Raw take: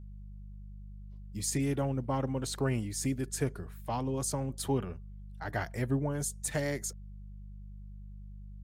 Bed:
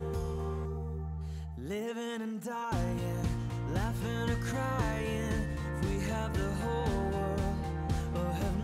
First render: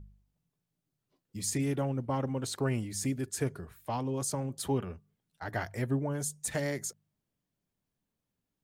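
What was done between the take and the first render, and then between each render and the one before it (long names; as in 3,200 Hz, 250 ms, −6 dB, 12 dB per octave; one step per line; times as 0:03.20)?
hum removal 50 Hz, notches 4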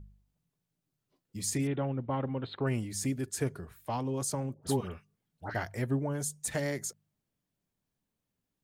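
0:01.67–0:02.67: elliptic low-pass filter 3,800 Hz
0:04.54–0:05.55: all-pass dispersion highs, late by 91 ms, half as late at 1,200 Hz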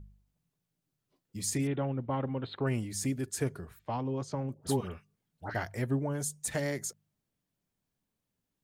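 0:03.79–0:04.49: high-frequency loss of the air 180 metres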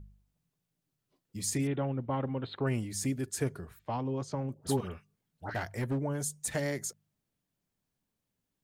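0:04.77–0:05.99: hard clipping −27 dBFS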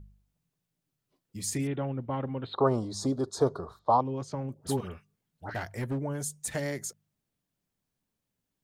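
0:02.53–0:04.01: drawn EQ curve 150 Hz 0 dB, 290 Hz +4 dB, 470 Hz +11 dB, 1,200 Hz +15 dB, 1,700 Hz −9 dB, 2,600 Hz −20 dB, 3,800 Hz +10 dB, 8,800 Hz −8 dB, 14,000 Hz −17 dB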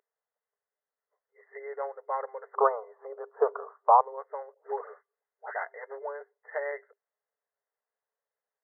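brick-wall band-pass 400–2,100 Hz
dynamic equaliser 1,100 Hz, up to +6 dB, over −41 dBFS, Q 0.98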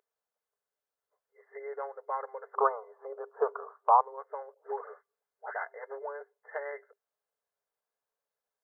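notch filter 1,900 Hz, Q 7.9
dynamic equaliser 570 Hz, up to −6 dB, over −38 dBFS, Q 1.4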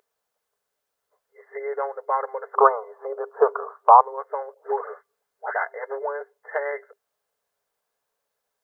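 level +10.5 dB
brickwall limiter −1 dBFS, peak gain reduction 1.5 dB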